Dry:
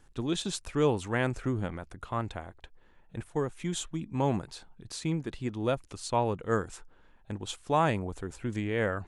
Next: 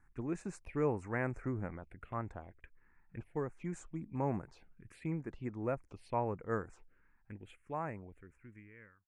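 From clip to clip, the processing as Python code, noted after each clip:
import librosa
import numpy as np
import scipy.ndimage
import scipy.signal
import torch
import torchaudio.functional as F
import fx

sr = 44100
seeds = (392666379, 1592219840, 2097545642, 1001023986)

y = fx.fade_out_tail(x, sr, length_s=2.78)
y = fx.env_phaser(y, sr, low_hz=500.0, high_hz=3300.0, full_db=-29.5)
y = fx.high_shelf_res(y, sr, hz=2900.0, db=-8.5, q=3.0)
y = y * librosa.db_to_amplitude(-7.0)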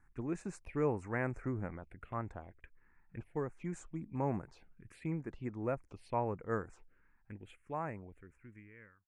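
y = x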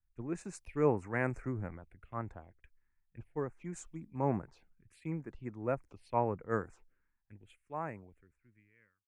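y = fx.band_widen(x, sr, depth_pct=70)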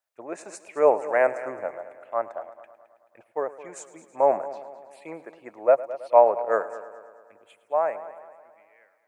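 y = fx.highpass_res(x, sr, hz=610.0, q=4.9)
y = fx.echo_heads(y, sr, ms=108, heads='first and second', feedback_pct=53, wet_db=-18)
y = y * librosa.db_to_amplitude(7.5)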